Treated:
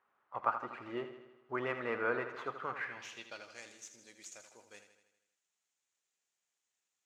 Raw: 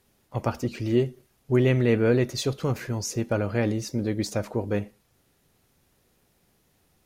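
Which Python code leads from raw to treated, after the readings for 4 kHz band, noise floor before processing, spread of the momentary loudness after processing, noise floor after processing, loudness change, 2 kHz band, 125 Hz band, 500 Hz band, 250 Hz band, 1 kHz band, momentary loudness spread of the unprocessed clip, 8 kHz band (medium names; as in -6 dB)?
-16.0 dB, -67 dBFS, 19 LU, under -85 dBFS, -13.0 dB, -5.0 dB, -30.5 dB, -15.5 dB, -21.5 dB, -1.5 dB, 9 LU, -16.0 dB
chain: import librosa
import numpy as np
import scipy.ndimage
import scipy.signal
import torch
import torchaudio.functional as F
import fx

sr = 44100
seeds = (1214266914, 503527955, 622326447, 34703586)

y = scipy.ndimage.median_filter(x, 9, mode='constant')
y = fx.low_shelf(y, sr, hz=390.0, db=-6.0)
y = fx.filter_sweep_bandpass(y, sr, from_hz=1200.0, to_hz=7100.0, start_s=2.57, end_s=3.63, q=3.1)
y = fx.high_shelf(y, sr, hz=9700.0, db=-10.5)
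y = fx.echo_feedback(y, sr, ms=80, feedback_pct=59, wet_db=-10.0)
y = F.gain(torch.from_numpy(y), 5.0).numpy()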